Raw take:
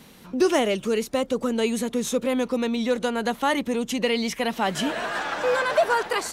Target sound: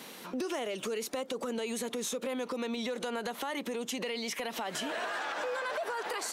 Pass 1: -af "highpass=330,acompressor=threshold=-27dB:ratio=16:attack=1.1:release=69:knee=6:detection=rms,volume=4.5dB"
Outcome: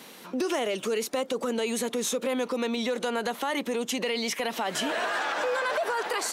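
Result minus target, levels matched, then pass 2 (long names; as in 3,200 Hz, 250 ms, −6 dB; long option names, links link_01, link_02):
downward compressor: peak gain reduction −7 dB
-af "highpass=330,acompressor=threshold=-34.5dB:ratio=16:attack=1.1:release=69:knee=6:detection=rms,volume=4.5dB"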